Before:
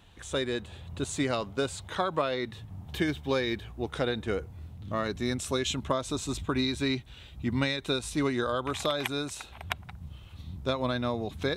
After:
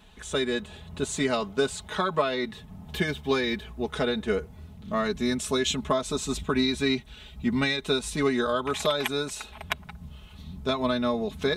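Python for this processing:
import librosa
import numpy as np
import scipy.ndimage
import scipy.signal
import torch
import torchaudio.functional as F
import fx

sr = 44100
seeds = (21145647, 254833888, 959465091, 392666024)

y = x + 0.78 * np.pad(x, (int(4.7 * sr / 1000.0), 0))[:len(x)]
y = y * librosa.db_to_amplitude(1.5)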